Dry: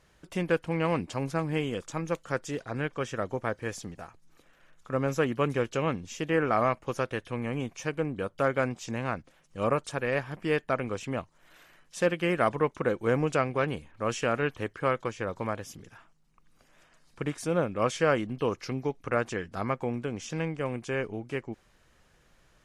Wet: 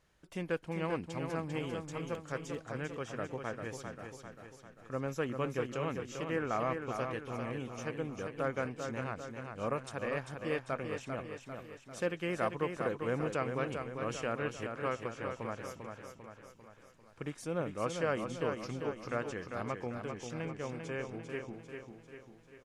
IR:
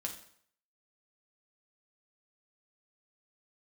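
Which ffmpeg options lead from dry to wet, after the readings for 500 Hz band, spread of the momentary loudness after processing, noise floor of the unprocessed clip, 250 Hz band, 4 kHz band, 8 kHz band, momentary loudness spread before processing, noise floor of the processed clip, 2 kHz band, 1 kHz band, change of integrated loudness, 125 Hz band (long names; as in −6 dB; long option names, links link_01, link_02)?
−7.0 dB, 13 LU, −64 dBFS, −7.0 dB, −7.0 dB, −7.0 dB, 9 LU, −59 dBFS, −7.0 dB, −7.5 dB, −7.5 dB, −7.5 dB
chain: -af "aecho=1:1:396|792|1188|1584|1980|2376|2772:0.501|0.266|0.141|0.0746|0.0395|0.021|0.0111,volume=-8.5dB"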